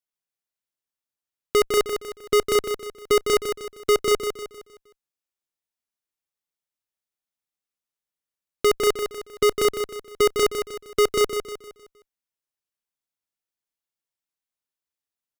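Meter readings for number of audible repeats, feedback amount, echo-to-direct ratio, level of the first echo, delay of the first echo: 4, 40%, -6.5 dB, -7.5 dB, 0.155 s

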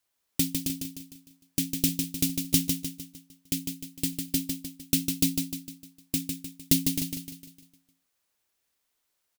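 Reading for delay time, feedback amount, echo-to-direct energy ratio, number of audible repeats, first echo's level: 0.152 s, 46%, -4.5 dB, 5, -5.5 dB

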